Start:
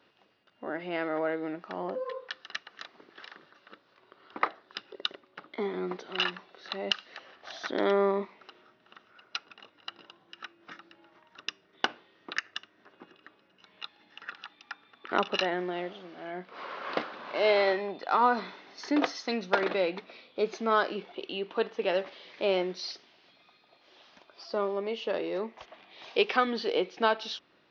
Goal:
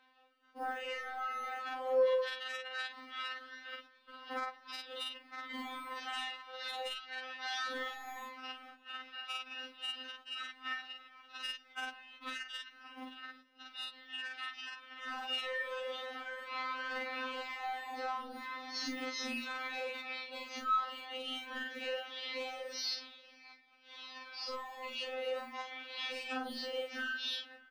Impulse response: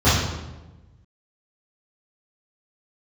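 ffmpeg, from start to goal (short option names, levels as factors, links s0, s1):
-filter_complex "[0:a]afftfilt=real='re':imag='-im':win_size=4096:overlap=0.75,equalizer=f=1900:t=o:w=2.5:g=10.5,agate=range=0.251:threshold=0.00141:ratio=16:detection=peak,aphaser=in_gain=1:out_gain=1:delay=3.7:decay=0.34:speed=0.11:type=sinusoidal,acrossover=split=140[s0][s1];[s1]acompressor=threshold=0.02:ratio=6[s2];[s0][s2]amix=inputs=2:normalize=0,acrossover=split=250|680[s3][s4][s5];[s3]acrusher=samples=27:mix=1:aa=0.000001[s6];[s6][s4][s5]amix=inputs=3:normalize=0,bandreject=f=50:t=h:w=6,bandreject=f=100:t=h:w=6,bandreject=f=150:t=h:w=6,bandreject=f=200:t=h:w=6,bandreject=f=250:t=h:w=6,asoftclip=type=tanh:threshold=0.0398,alimiter=level_in=3.55:limit=0.0631:level=0:latency=1:release=93,volume=0.282,bass=f=250:g=4,treble=f=4000:g=3,asplit=2[s7][s8];[s8]adelay=583.1,volume=0.0708,highshelf=f=4000:g=-13.1[s9];[s7][s9]amix=inputs=2:normalize=0,afftfilt=real='re*3.46*eq(mod(b,12),0)':imag='im*3.46*eq(mod(b,12),0)':win_size=2048:overlap=0.75,volume=2"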